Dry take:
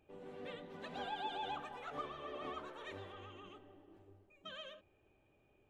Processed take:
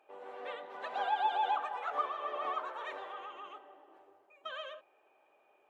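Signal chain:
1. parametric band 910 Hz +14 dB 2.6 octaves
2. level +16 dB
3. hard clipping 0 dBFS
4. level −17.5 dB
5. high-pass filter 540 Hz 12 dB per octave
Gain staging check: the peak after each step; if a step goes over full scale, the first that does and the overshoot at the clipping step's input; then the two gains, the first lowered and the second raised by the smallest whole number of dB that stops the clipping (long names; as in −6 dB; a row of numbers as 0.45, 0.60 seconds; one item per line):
−18.0, −2.0, −2.0, −19.5, −20.5 dBFS
no step passes full scale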